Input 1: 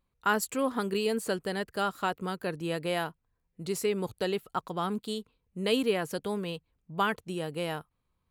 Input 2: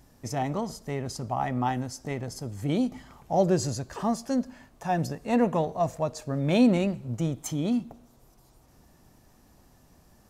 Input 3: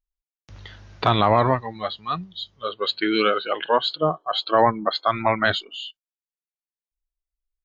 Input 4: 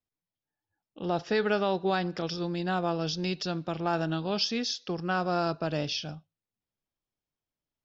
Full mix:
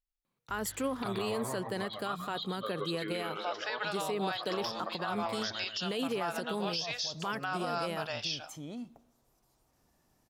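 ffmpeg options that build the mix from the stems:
-filter_complex "[0:a]highpass=f=130:w=0.5412,highpass=f=130:w=1.3066,alimiter=limit=0.0794:level=0:latency=1:release=24,adelay=250,volume=0.944[s0];[1:a]lowshelf=f=320:g=-6.5,alimiter=level_in=1.06:limit=0.0631:level=0:latency=1:release=28,volume=0.944,adelay=1050,volume=0.316[s1];[2:a]acompressor=threshold=0.0447:ratio=6,volume=0.473,asplit=3[s2][s3][s4];[s3]volume=0.422[s5];[3:a]highpass=f=720:w=0.5412,highpass=f=720:w=1.3066,adelay=2350,volume=1.12[s6];[s4]apad=whole_len=500179[s7];[s1][s7]sidechaincompress=threshold=0.00158:ratio=8:attack=16:release=206[s8];[s5]aecho=0:1:127|254|381|508|635|762:1|0.42|0.176|0.0741|0.0311|0.0131[s9];[s0][s8][s2][s6][s9]amix=inputs=5:normalize=0,alimiter=level_in=1.06:limit=0.0631:level=0:latency=1:release=95,volume=0.944"

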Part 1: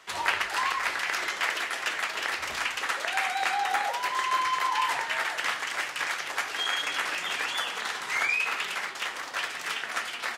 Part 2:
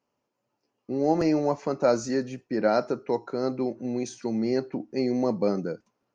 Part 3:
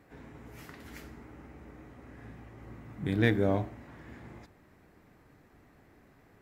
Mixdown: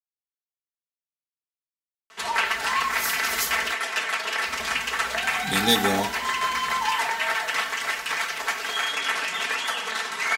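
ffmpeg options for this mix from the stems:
-filter_complex "[0:a]asoftclip=type=tanh:threshold=0.188,adelay=2100,volume=1.26[s0];[2:a]aexciter=amount=15.4:drive=6.8:freq=3400,adelay=2450,volume=1,asplit=3[s1][s2][s3];[s1]atrim=end=3.74,asetpts=PTS-STARTPTS,afade=t=out:st=3.736:d=0.004:c=hsin[s4];[s2]atrim=start=3.74:end=4.45,asetpts=PTS-STARTPTS,volume=0[s5];[s3]atrim=start=4.45,asetpts=PTS-STARTPTS,afade=t=in:d=0.004:c=hsin[s6];[s4][s5][s6]concat=n=3:v=0:a=1[s7];[s0][s7]amix=inputs=2:normalize=0,aecho=1:1:4.5:0.75"

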